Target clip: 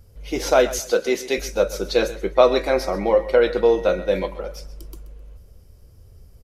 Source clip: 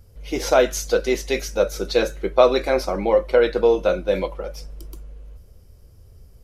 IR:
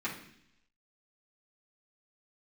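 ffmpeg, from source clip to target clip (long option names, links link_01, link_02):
-filter_complex "[0:a]asettb=1/sr,asplit=3[link_01][link_02][link_03];[link_01]atrim=end=0.794[link_04];[link_02]atrim=start=0.79:end=1.38,asetpts=PTS-STARTPTS,afade=type=in:duration=0.004:curve=qsin,afade=type=out:start_time=0.586:duration=0.004:curve=qsin,highpass=170[link_05];[link_03]atrim=start=1.376[link_06];[link_04][link_05]acrossfade=duration=0.004:curve1=hsin:curve2=qsin[link_07];[link_07][link_06]acrossfade=duration=0.004:curve1=qsin:curve2=hsin,asettb=1/sr,asplit=3[link_08][link_09][link_10];[link_08]atrim=end=2.354[link_11];[link_09]atrim=start=2.35:end=4.27,asetpts=PTS-STARTPTS,afade=type=in:duration=0.004:curve=qsin,afade=type=out:start_time=1.916:duration=0.004:curve=qsin,aeval=exprs='val(0)+0.00447*sin(2*PI*1900*n/s)':channel_layout=same[link_12];[link_10]atrim=start=4.266[link_13];[link_11][link_12]acrossfade=duration=0.004:curve1=hsin:curve2=qsin[link_14];[link_14][link_13]acrossfade=duration=0.004:curve1=qsin:curve2=hsin,asplit=2[link_15][link_16];[link_16]aecho=0:1:130|260|390:0.158|0.0428|0.0116[link_17];[link_15][link_17]amix=inputs=2:normalize=0"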